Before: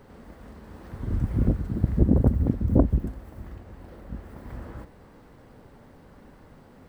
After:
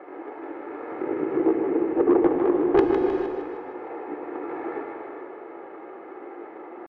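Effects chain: median filter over 25 samples; elliptic band-pass 230–1600 Hz, stop band 80 dB; dynamic bell 440 Hz, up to -3 dB, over -41 dBFS, Q 3.1; comb 3.2 ms, depth 48%; in parallel at 0 dB: compression, threshold -41 dBFS, peak gain reduction 25 dB; on the sum: pitch shift +5.5 st; saturation -17.5 dBFS, distortion -11 dB; two-band feedback delay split 360 Hz, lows 109 ms, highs 155 ms, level -6.5 dB; gated-style reverb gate 480 ms flat, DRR 4 dB; trim +5.5 dB

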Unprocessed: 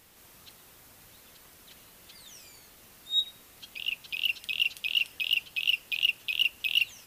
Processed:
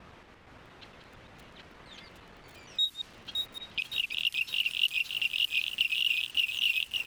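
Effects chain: slices played last to first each 116 ms, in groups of 4; dynamic bell 570 Hz, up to -7 dB, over -55 dBFS, Q 1.4; compression 2.5:1, threshold -37 dBFS, peak gain reduction 11.5 dB; delay 581 ms -20.5 dB; level-controlled noise filter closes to 1.8 kHz, open at -32.5 dBFS; bit-crushed delay 565 ms, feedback 55%, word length 9-bit, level -4 dB; trim +7 dB

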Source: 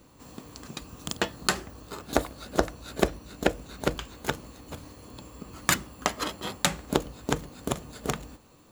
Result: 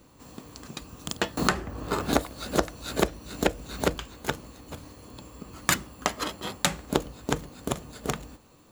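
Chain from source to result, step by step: 1.37–3.89 s: three bands compressed up and down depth 100%

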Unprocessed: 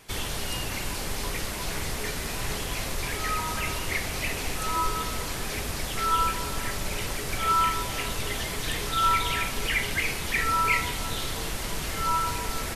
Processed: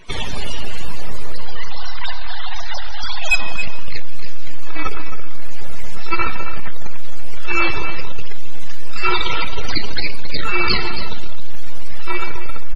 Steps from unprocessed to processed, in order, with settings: 1.33–3.36 s: formants replaced by sine waves; reverb removal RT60 0.58 s; hum notches 50/100/150/200/250/300/350 Hz; full-wave rectifier; Schroeder reverb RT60 2.5 s, combs from 30 ms, DRR 5.5 dB; sine folder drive 10 dB, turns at -7 dBFS; delay 269 ms -11 dB; loudest bins only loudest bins 64

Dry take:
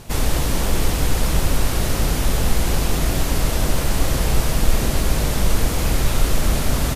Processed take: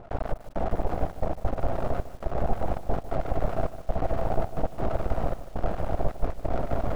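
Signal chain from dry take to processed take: reverse; upward compressor, threshold -18 dBFS; reverse; resonant low-pass 690 Hz, resonance Q 4.9; half-wave rectifier; echo that smears into a reverb 555 ms, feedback 46%, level -12 dB; trance gate "xxx..xxxxx.x.xx" 135 bpm -24 dB; bit-crushed delay 151 ms, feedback 35%, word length 6-bit, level -14 dB; trim -6.5 dB

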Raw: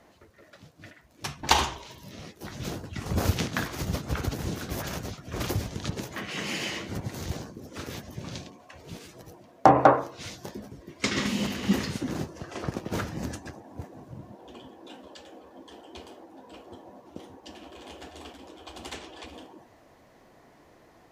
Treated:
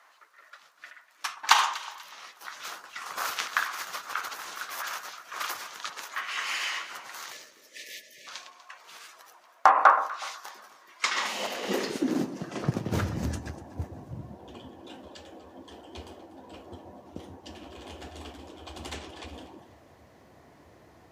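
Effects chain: high-pass sweep 1.2 kHz -> 75 Hz, 10.97–13.14 s; spectral selection erased 7.32–8.27 s, 660–1700 Hz; echo whose repeats swap between lows and highs 122 ms, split 1.3 kHz, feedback 56%, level -12 dB

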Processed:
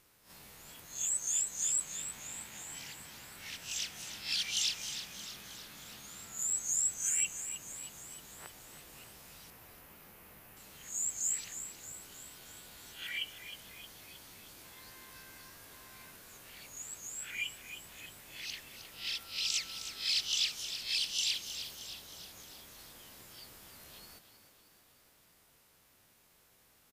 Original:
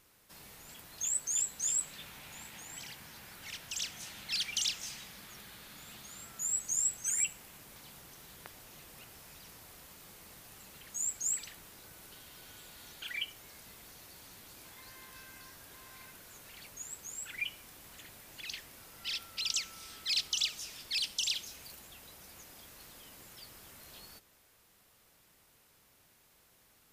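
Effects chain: reverse spectral sustain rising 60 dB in 0.36 s; 9.50–10.57 s: high-order bell 5.6 kHz -9.5 dB; frequency-shifting echo 312 ms, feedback 58%, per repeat +67 Hz, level -10.5 dB; trim -2.5 dB

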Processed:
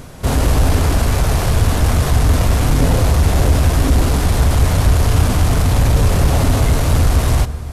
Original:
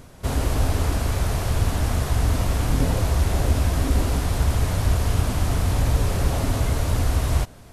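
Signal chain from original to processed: in parallel at +3 dB: saturation -21.5 dBFS, distortion -10 dB; on the sum: reverberation RT60 2.6 s, pre-delay 3 ms, DRR 13.5 dB; trim +2.5 dB

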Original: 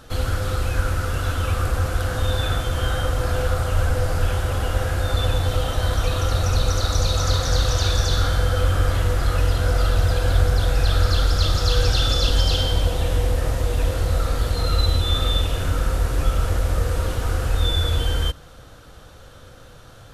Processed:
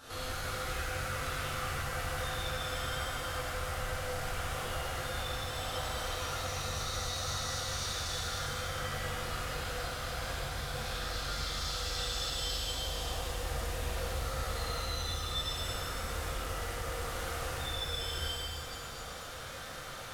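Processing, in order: bass shelf 420 Hz -12 dB; compression 12:1, threshold -39 dBFS, peak gain reduction 19 dB; pitch-shifted reverb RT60 2.4 s, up +7 st, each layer -8 dB, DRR -11.5 dB; trim -6 dB

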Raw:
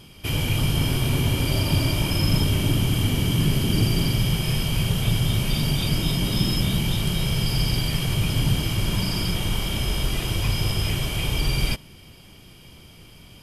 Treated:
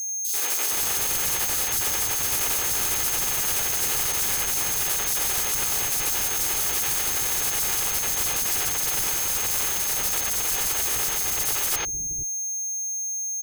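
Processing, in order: spectral contrast reduction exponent 0.16; comb 2.4 ms, depth 54%; reverse; compression 5:1, threshold -32 dBFS, peak gain reduction 15.5 dB; reverse; bit crusher 5-bit; whistle 6.4 kHz -48 dBFS; in parallel at -7 dB: fuzz box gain 50 dB, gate -54 dBFS; on the sum: three bands offset in time highs, mids, lows 90/470 ms, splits 280/3900 Hz; trim -2 dB

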